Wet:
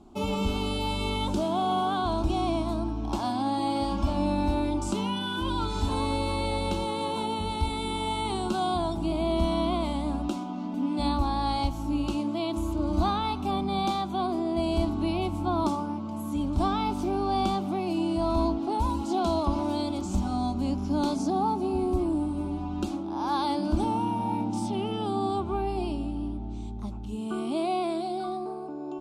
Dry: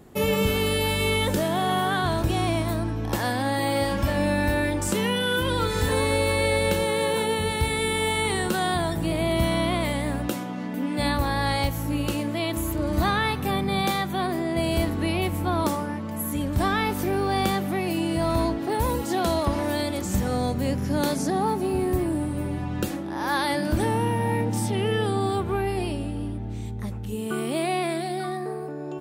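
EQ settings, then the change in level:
high-frequency loss of the air 90 metres
low-shelf EQ 61 Hz +5.5 dB
phaser with its sweep stopped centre 490 Hz, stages 6
0.0 dB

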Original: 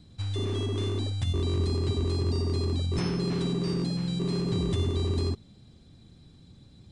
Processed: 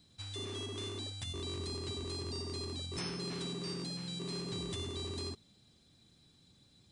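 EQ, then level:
spectral tilt +2.5 dB per octave
−7.5 dB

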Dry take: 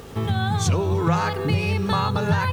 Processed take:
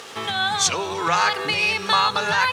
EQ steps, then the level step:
high-pass filter 960 Hz 6 dB per octave
high-frequency loss of the air 71 metres
spectral tilt +2.5 dB per octave
+8.0 dB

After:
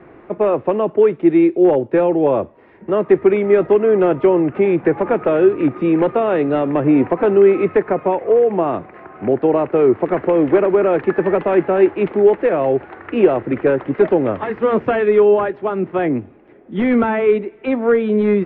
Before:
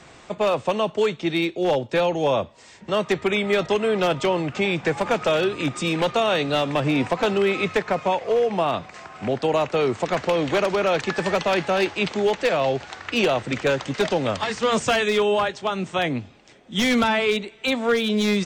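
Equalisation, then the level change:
low-pass filter 2,100 Hz 24 dB per octave
high-frequency loss of the air 110 metres
parametric band 350 Hz +12 dB 0.92 octaves
+1.0 dB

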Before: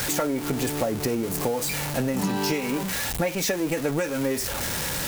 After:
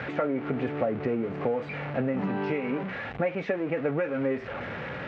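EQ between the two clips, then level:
loudspeaker in its box 130–2,200 Hz, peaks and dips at 180 Hz −4 dB, 320 Hz −5 dB, 940 Hz −7 dB, 1,700 Hz −3 dB
0.0 dB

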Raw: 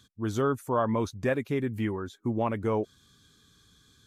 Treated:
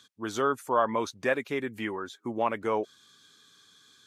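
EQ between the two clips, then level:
meter weighting curve A
+3.5 dB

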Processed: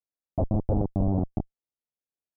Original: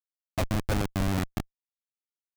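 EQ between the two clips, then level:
Butterworth low-pass 800 Hz 36 dB per octave
+3.0 dB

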